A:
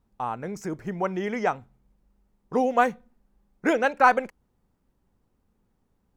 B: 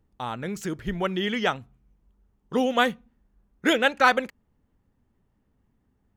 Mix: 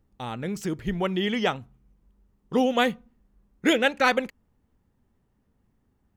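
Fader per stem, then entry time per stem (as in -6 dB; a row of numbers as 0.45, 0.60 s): -6.5, -0.5 dB; 0.00, 0.00 s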